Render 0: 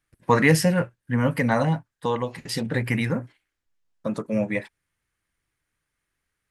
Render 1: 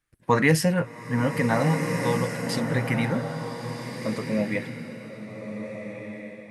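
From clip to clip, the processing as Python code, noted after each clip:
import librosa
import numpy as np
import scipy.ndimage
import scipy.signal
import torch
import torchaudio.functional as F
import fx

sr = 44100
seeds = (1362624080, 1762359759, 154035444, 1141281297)

y = fx.rev_bloom(x, sr, seeds[0], attack_ms=1620, drr_db=4.5)
y = y * librosa.db_to_amplitude(-2.0)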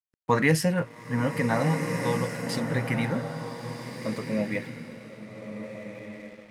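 y = np.sign(x) * np.maximum(np.abs(x) - 10.0 ** (-50.0 / 20.0), 0.0)
y = y * librosa.db_to_amplitude(-2.0)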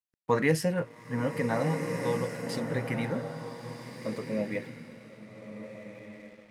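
y = fx.dynamic_eq(x, sr, hz=440.0, q=1.3, threshold_db=-39.0, ratio=4.0, max_db=5)
y = y * librosa.db_to_amplitude(-5.5)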